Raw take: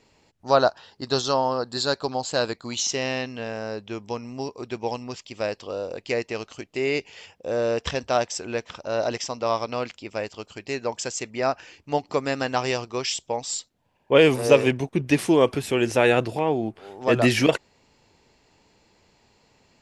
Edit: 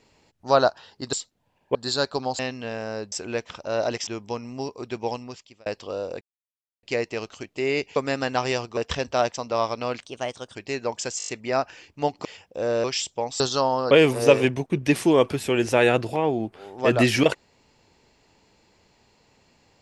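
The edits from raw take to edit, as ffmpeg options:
ffmpeg -i in.wav -filter_complex "[0:a]asplit=22[link_01][link_02][link_03][link_04][link_05][link_06][link_07][link_08][link_09][link_10][link_11][link_12][link_13][link_14][link_15][link_16][link_17][link_18][link_19][link_20][link_21][link_22];[link_01]atrim=end=1.132[link_23];[link_02]atrim=start=13.518:end=14.142[link_24];[link_03]atrim=start=1.638:end=2.282[link_25];[link_04]atrim=start=3.138:end=3.872[link_26];[link_05]atrim=start=8.318:end=9.272[link_27];[link_06]atrim=start=3.868:end=5.46,asetpts=PTS-STARTPTS,afade=type=out:start_time=1.032:duration=0.56[link_28];[link_07]atrim=start=5.46:end=6.01,asetpts=PTS-STARTPTS,afade=type=in:duration=0.004:curve=hsin,afade=type=out:start_time=0.546:duration=0.004:curve=hsin,apad=pad_dur=0.62[link_29];[link_08]atrim=start=6.01:end=7.142,asetpts=PTS-STARTPTS,afade=type=in:duration=0.004:curve=hsin[link_30];[link_09]atrim=start=12.148:end=12.962[link_31];[link_10]atrim=start=7.728:end=8.322[link_32];[link_11]atrim=start=9.268:end=9.934[link_33];[link_12]atrim=start=9.93:end=10.55,asetpts=PTS-STARTPTS,asetrate=51597,aresample=44100,atrim=end_sample=23369,asetpts=PTS-STARTPTS[link_34];[link_13]atrim=start=10.546:end=11.202[link_35];[link_14]atrim=start=11.178:end=11.202[link_36];[link_15]atrim=start=11.178:end=11.202[link_37];[link_16]atrim=start=11.178:end=11.202[link_38];[link_17]atrim=start=11.178:end=11.202[link_39];[link_18]atrim=start=11.178:end=12.152[link_40];[link_19]atrim=start=7.138:end=7.732[link_41];[link_20]atrim=start=12.958:end=13.522[link_42];[link_21]atrim=start=1.128:end=1.642[link_43];[link_22]atrim=start=14.138[link_44];[link_23][link_24]acrossfade=duration=0.004:curve1=hsin:curve2=hsin[link_45];[link_45][link_25]acrossfade=duration=0.004:curve1=hsin:curve2=hsin[link_46];[link_46][link_26]acrossfade=duration=0.004:curve1=hsin:curve2=hsin[link_47];[link_47][link_27]acrossfade=duration=0.004:curve1=hsin:curve2=hsin[link_48];[link_28][link_29][link_30]concat=n=3:v=0:a=1[link_49];[link_48][link_49]acrossfade=duration=0.004:curve1=hsin:curve2=hsin[link_50];[link_50][link_31]acrossfade=duration=0.004:curve1=hsin:curve2=hsin[link_51];[link_51][link_32]acrossfade=duration=0.004:curve1=hsin:curve2=hsin[link_52];[link_52][link_33]acrossfade=duration=0.004:curve1=hsin:curve2=hsin[link_53];[link_53][link_34]acrossfade=duration=0.004:curve1=hsin:curve2=hsin[link_54];[link_54][link_35]acrossfade=duration=0.004:curve1=hsin:curve2=hsin[link_55];[link_55][link_36]acrossfade=duration=0.004:curve1=hsin:curve2=hsin[link_56];[link_56][link_37]acrossfade=duration=0.004:curve1=hsin:curve2=hsin[link_57];[link_57][link_38]acrossfade=duration=0.004:curve1=hsin:curve2=hsin[link_58];[link_58][link_39]acrossfade=duration=0.004:curve1=hsin:curve2=hsin[link_59];[link_59][link_40]acrossfade=duration=0.004:curve1=hsin:curve2=hsin[link_60];[link_60][link_41]acrossfade=duration=0.004:curve1=hsin:curve2=hsin[link_61];[link_61][link_42]acrossfade=duration=0.004:curve1=hsin:curve2=hsin[link_62];[link_62][link_43]acrossfade=duration=0.004:curve1=hsin:curve2=hsin[link_63];[link_63][link_44]acrossfade=duration=0.004:curve1=hsin:curve2=hsin" out.wav

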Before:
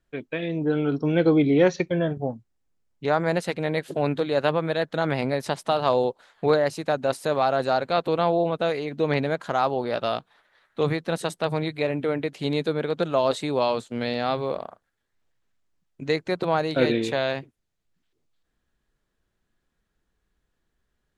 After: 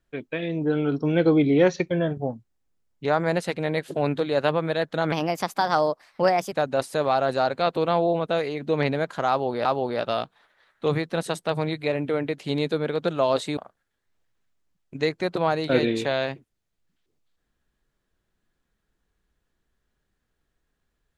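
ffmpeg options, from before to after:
ffmpeg -i in.wav -filter_complex "[0:a]asplit=5[link_01][link_02][link_03][link_04][link_05];[link_01]atrim=end=5.124[link_06];[link_02]atrim=start=5.12:end=6.83,asetpts=PTS-STARTPTS,asetrate=53802,aresample=44100,atrim=end_sample=61812,asetpts=PTS-STARTPTS[link_07];[link_03]atrim=start=6.826:end=9.962[link_08];[link_04]atrim=start=9.598:end=13.522[link_09];[link_05]atrim=start=14.638[link_10];[link_06][link_07]acrossfade=duration=0.004:curve1=hsin:curve2=hsin[link_11];[link_11][link_08]acrossfade=duration=0.004:curve1=hsin:curve2=hsin[link_12];[link_12][link_09]acrossfade=duration=0.004:curve1=hsin:curve2=hsin[link_13];[link_13][link_10]acrossfade=duration=0.004:curve1=hsin:curve2=hsin" out.wav

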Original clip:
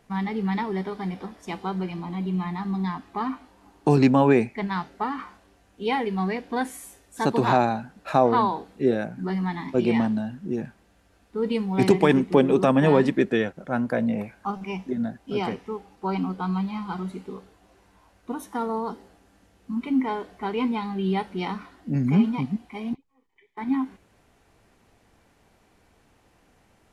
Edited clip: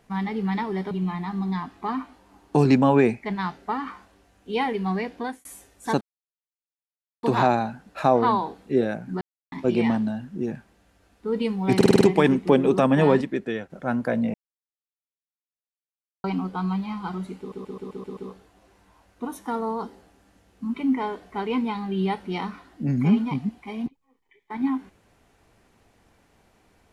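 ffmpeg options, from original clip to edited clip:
ffmpeg -i in.wav -filter_complex "[0:a]asplit=21[link_01][link_02][link_03][link_04][link_05][link_06][link_07][link_08][link_09][link_10][link_11][link_12][link_13][link_14][link_15][link_16][link_17][link_18][link_19][link_20][link_21];[link_01]atrim=end=0.912[link_22];[link_02]atrim=start=2.228:end=6.77,asetpts=PTS-STARTPTS,afade=type=out:start_time=4.232:duration=0.31[link_23];[link_03]atrim=start=6.77:end=7.33,asetpts=PTS-STARTPTS,afade=type=in:duration=0.004:curve=hsin,afade=type=out:start_time=0.556:duration=0.004:curve=hsin,apad=pad_dur=1.22[link_24];[link_04]atrim=start=7.33:end=9.31,asetpts=PTS-STARTPTS,afade=type=in:duration=0.004:curve=hsin,afade=type=out:start_time=1.976:duration=0.004:curve=hsin[link_25];[link_05]atrim=start=9.31:end=9.62,asetpts=PTS-STARTPTS,volume=0[link_26];[link_06]atrim=start=9.62:end=11.912,asetpts=PTS-STARTPTS,afade=type=in:duration=0.004:curve=hsin[link_27];[link_07]atrim=start=11.858:end=11.912[link_28];[link_08]atrim=start=11.858:end=11.912[link_29];[link_09]atrim=start=11.858:end=11.912[link_30];[link_10]atrim=start=11.858:end=11.912[link_31];[link_11]atrim=start=11.858:end=13.062[link_32];[link_12]atrim=start=13.058:end=13.552,asetpts=PTS-STARTPTS,volume=-6dB[link_33];[link_13]atrim=start=13.548:end=14.19,asetpts=PTS-STARTPTS,afade=type=out:start_time=0.638:duration=0.004:curve=hsin[link_34];[link_14]atrim=start=14.19:end=16.09,asetpts=PTS-STARTPTS,volume=0[link_35];[link_15]atrim=start=16.09:end=17.372,asetpts=PTS-STARTPTS,afade=type=in:duration=0.004:curve=hsin[link_36];[link_16]atrim=start=17.238:end=17.372[link_37];[link_17]atrim=start=17.238:end=17.372[link_38];[link_18]atrim=start=17.238:end=17.372[link_39];[link_19]atrim=start=17.238:end=17.372[link_40];[link_20]atrim=start=17.238:end=17.372[link_41];[link_21]atrim=start=17.238[link_42];[link_23][link_24][link_25][link_26][link_27]concat=n=5:v=0:a=1[link_43];[link_22][link_43]acrossfade=duration=0.004:curve1=hsin:curve2=hsin[link_44];[link_44][link_28]acrossfade=duration=0.004:curve1=hsin:curve2=hsin[link_45];[link_45][link_29]acrossfade=duration=0.004:curve1=hsin:curve2=hsin[link_46];[link_46][link_30]acrossfade=duration=0.004:curve1=hsin:curve2=hsin[link_47];[link_47][link_31]acrossfade=duration=0.004:curve1=hsin:curve2=hsin[link_48];[link_48][link_32]acrossfade=duration=0.004:curve1=hsin:curve2=hsin[link_49];[link_49][link_33]acrossfade=duration=0.004:curve1=hsin:curve2=hsin[link_50];[link_34][link_35][link_36]concat=n=3:v=0:a=1[link_51];[link_50][link_51]acrossfade=duration=0.004:curve1=hsin:curve2=hsin[link_52];[link_52][link_37]acrossfade=duration=0.004:curve1=hsin:curve2=hsin[link_53];[link_53][link_38]acrossfade=duration=0.004:curve1=hsin:curve2=hsin[link_54];[link_54][link_39]acrossfade=duration=0.004:curve1=hsin:curve2=hsin[link_55];[link_55][link_40]acrossfade=duration=0.004:curve1=hsin:curve2=hsin[link_56];[link_56][link_41]acrossfade=duration=0.004:curve1=hsin:curve2=hsin[link_57];[link_57][link_42]acrossfade=duration=0.004:curve1=hsin:curve2=hsin" out.wav

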